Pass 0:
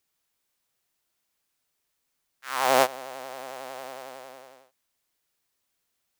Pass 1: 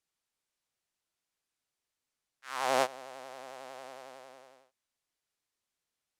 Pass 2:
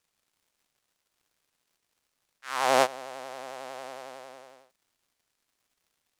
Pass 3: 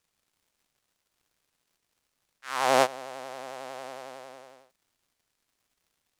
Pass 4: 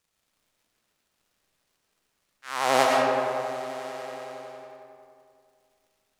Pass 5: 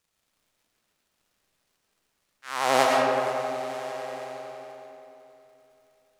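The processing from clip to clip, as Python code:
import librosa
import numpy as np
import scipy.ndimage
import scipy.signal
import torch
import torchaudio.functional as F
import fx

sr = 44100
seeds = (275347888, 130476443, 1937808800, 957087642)

y1 = scipy.signal.sosfilt(scipy.signal.butter(2, 10000.0, 'lowpass', fs=sr, output='sos'), x)
y1 = y1 * 10.0 ** (-7.5 / 20.0)
y2 = fx.dmg_crackle(y1, sr, seeds[0], per_s=210.0, level_db=-66.0)
y2 = y2 * 10.0 ** (6.0 / 20.0)
y3 = fx.low_shelf(y2, sr, hz=230.0, db=4.0)
y4 = fx.rev_freeverb(y3, sr, rt60_s=2.4, hf_ratio=0.5, predelay_ms=65, drr_db=-1.5)
y5 = fx.echo_feedback(y4, sr, ms=473, feedback_pct=51, wet_db=-17.5)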